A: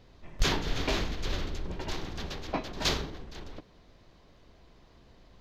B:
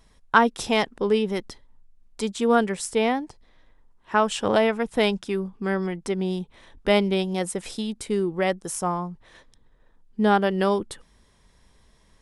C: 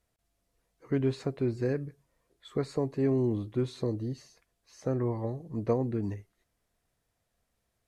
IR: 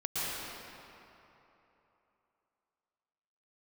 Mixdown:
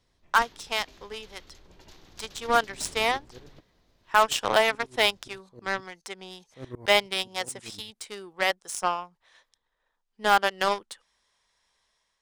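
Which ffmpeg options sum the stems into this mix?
-filter_complex "[0:a]acrossover=split=410|3300[link_01][link_02][link_03];[link_01]acompressor=threshold=-40dB:ratio=4[link_04];[link_02]acompressor=threshold=-46dB:ratio=4[link_05];[link_03]acompressor=threshold=-51dB:ratio=4[link_06];[link_04][link_05][link_06]amix=inputs=3:normalize=0,volume=-5dB[link_07];[1:a]acrossover=split=570 7000:gain=0.112 1 0.141[link_08][link_09][link_10];[link_08][link_09][link_10]amix=inputs=3:normalize=0,volume=-3.5dB,asplit=2[link_11][link_12];[2:a]aeval=exprs='val(0)*pow(10,-20*if(lt(mod(-9.5*n/s,1),2*abs(-9.5)/1000),1-mod(-9.5*n/s,1)/(2*abs(-9.5)/1000),(mod(-9.5*n/s,1)-2*abs(-9.5)/1000)/(1-2*abs(-9.5)/1000))/20)':channel_layout=same,adelay=1700,volume=-3.5dB[link_13];[link_12]apad=whole_len=422056[link_14];[link_13][link_14]sidechaincompress=threshold=-33dB:ratio=8:attack=5.6:release=1440[link_15];[link_07][link_11][link_15]amix=inputs=3:normalize=0,highshelf=frequency=5800:gain=11.5,dynaudnorm=framelen=990:gausssize=3:maxgain=6.5dB,aeval=exprs='0.316*(cos(1*acos(clip(val(0)/0.316,-1,1)))-cos(1*PI/2))+0.0316*(cos(7*acos(clip(val(0)/0.316,-1,1)))-cos(7*PI/2))':channel_layout=same"

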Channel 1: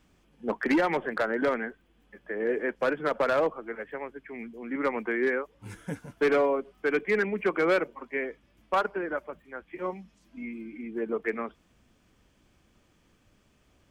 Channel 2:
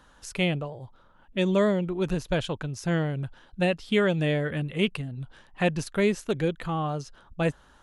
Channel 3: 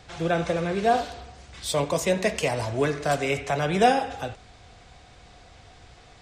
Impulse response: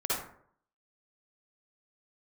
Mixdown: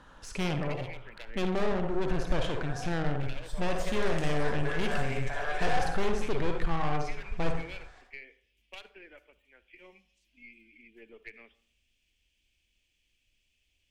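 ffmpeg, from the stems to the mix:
-filter_complex "[0:a]highshelf=frequency=1800:width_type=q:width=3:gain=13,volume=-19dB,asplit=2[link_01][link_02];[link_02]volume=-23.5dB[link_03];[1:a]asoftclip=type=tanh:threshold=-28dB,aemphasis=mode=reproduction:type=50kf,volume=2.5dB,asplit=2[link_04][link_05];[link_05]volume=-9dB[link_06];[2:a]highpass=frequency=430:width=0.5412,highpass=frequency=430:width=1.3066,equalizer=frequency=1700:width_type=o:width=0.28:gain=13,adelay=1800,volume=-10.5dB,afade=type=in:start_time=3.56:duration=0.46:silence=0.237137,asplit=2[link_07][link_08];[link_08]volume=-5.5dB[link_09];[link_01][link_07]amix=inputs=2:normalize=0,acompressor=threshold=-40dB:ratio=6,volume=0dB[link_10];[3:a]atrim=start_sample=2205[link_11];[link_03][link_06][link_09]amix=inputs=3:normalize=0[link_12];[link_12][link_11]afir=irnorm=-1:irlink=0[link_13];[link_04][link_10][link_13]amix=inputs=3:normalize=0,aeval=exprs='(tanh(17.8*val(0)+0.5)-tanh(0.5))/17.8':channel_layout=same,asubboost=boost=6:cutoff=61"

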